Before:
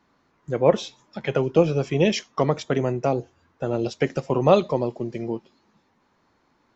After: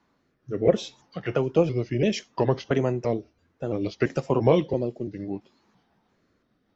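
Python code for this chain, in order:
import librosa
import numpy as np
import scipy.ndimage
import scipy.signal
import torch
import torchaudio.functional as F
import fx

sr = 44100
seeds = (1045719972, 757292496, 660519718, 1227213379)

y = fx.pitch_trill(x, sr, semitones=-2.5, every_ms=338)
y = fx.rotary(y, sr, hz=0.65)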